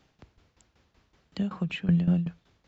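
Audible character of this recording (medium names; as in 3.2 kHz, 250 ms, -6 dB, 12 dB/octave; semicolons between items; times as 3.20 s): tremolo saw down 5.3 Hz, depth 80%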